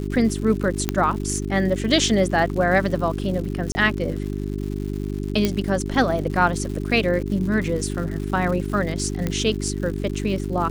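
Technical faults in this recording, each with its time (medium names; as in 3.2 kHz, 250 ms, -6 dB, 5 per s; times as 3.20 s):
crackle 200 per s -31 dBFS
hum 50 Hz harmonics 8 -27 dBFS
0.89 s: pop -6 dBFS
3.72–3.75 s: dropout 30 ms
5.45 s: pop -6 dBFS
9.27 s: pop -11 dBFS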